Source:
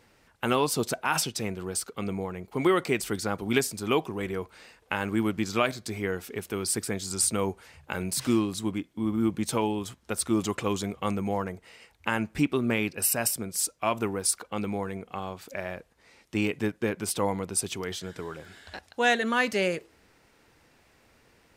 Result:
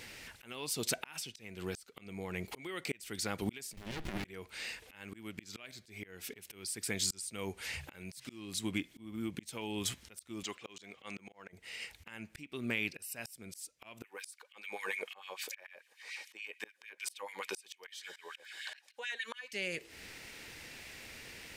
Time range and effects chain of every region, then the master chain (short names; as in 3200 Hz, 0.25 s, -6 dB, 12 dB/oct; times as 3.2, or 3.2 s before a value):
3.73–4.25 compressor 8:1, threshold -34 dBFS + running maximum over 65 samples
10.43–11.53 HPF 620 Hz 6 dB/oct + bell 12000 Hz -14.5 dB 0.89 oct + auto swell 0.261 s
14.04–19.53 LFO high-pass sine 6.8 Hz 550–2600 Hz + notch comb 680 Hz
whole clip: resonant high shelf 1600 Hz +8 dB, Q 1.5; compressor 6:1, threshold -33 dBFS; auto swell 0.735 s; gain +6.5 dB